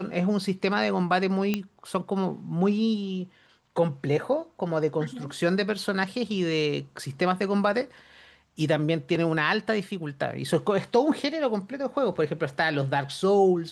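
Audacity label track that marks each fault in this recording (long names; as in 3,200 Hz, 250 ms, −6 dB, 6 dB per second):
1.540000	1.540000	click −12 dBFS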